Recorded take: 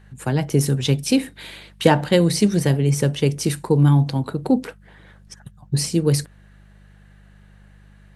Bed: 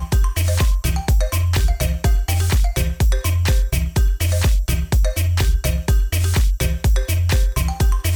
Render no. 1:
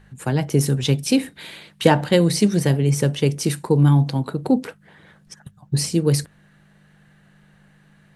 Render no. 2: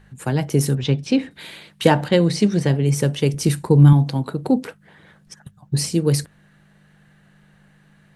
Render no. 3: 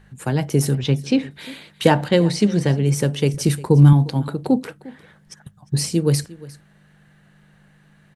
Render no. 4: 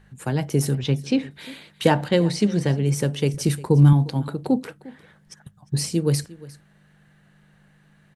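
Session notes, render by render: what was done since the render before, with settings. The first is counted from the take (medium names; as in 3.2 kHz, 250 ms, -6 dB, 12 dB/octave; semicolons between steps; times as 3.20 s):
de-hum 50 Hz, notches 2
0.75–1.31 s: distance through air 150 m; 2.08–2.83 s: Bessel low-pass 5.4 kHz; 3.34–3.93 s: bass shelf 130 Hz +11 dB
delay 353 ms -20 dB
trim -3 dB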